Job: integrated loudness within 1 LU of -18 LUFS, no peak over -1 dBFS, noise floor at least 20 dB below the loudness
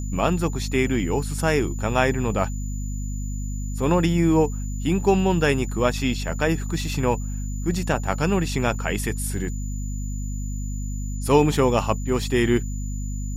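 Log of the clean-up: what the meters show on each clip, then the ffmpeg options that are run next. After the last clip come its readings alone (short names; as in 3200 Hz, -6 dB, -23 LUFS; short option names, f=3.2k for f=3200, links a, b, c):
hum 50 Hz; harmonics up to 250 Hz; hum level -26 dBFS; steady tone 7000 Hz; tone level -41 dBFS; loudness -24.0 LUFS; peak -5.0 dBFS; loudness target -18.0 LUFS
-> -af "bandreject=f=50:t=h:w=6,bandreject=f=100:t=h:w=6,bandreject=f=150:t=h:w=6,bandreject=f=200:t=h:w=6,bandreject=f=250:t=h:w=6"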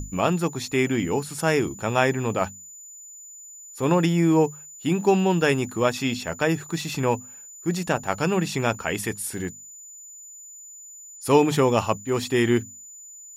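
hum none; steady tone 7000 Hz; tone level -41 dBFS
-> -af "bandreject=f=7k:w=30"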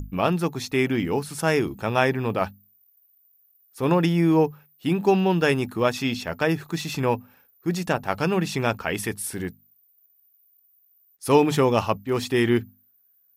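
steady tone none; loudness -23.5 LUFS; peak -5.5 dBFS; loudness target -18.0 LUFS
-> -af "volume=5.5dB,alimiter=limit=-1dB:level=0:latency=1"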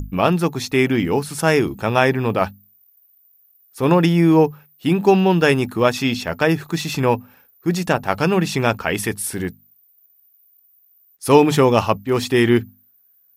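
loudness -18.0 LUFS; peak -1.0 dBFS; noise floor -57 dBFS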